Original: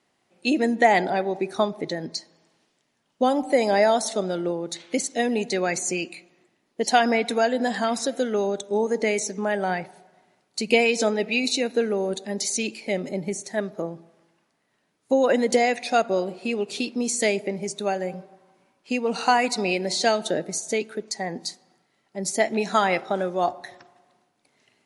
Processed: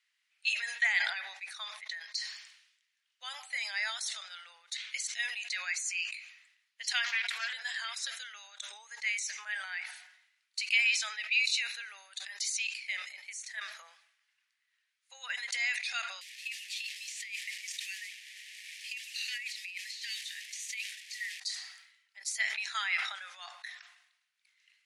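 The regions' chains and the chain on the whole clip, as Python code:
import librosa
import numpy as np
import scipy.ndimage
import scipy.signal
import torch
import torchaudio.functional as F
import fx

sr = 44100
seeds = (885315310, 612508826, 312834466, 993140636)

y = fx.chain(x, sr, fx.peak_eq(hz=390.0, db=-6.0, octaves=0.29),
    fx.doppler_dist(depth_ms=0.29), at=(7.04, 7.53))
y = fx.chain(y, sr, fx.delta_mod(bps=64000, step_db=-33.5),
    fx.cheby1_highpass(hz=1800.0, order=6),
    fx.over_compress(threshold_db=-34.0, ratio=-0.5), at=(16.21, 21.4))
y = scipy.signal.sosfilt(scipy.signal.cheby2(4, 80, 310.0, 'highpass', fs=sr, output='sos'), y)
y = fx.high_shelf(y, sr, hz=4800.0, db=-11.5)
y = fx.sustainer(y, sr, db_per_s=69.0)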